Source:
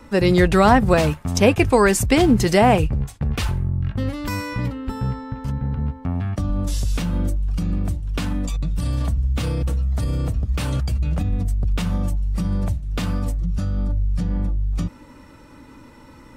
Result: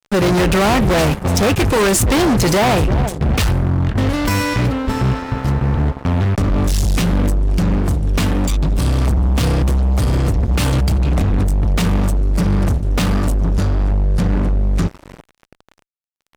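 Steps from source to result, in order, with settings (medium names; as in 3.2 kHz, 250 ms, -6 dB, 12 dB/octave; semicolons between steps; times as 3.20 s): bucket-brigade echo 340 ms, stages 2048, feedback 44%, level -17 dB; fuzz box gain 26 dB, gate -35 dBFS; trim +1 dB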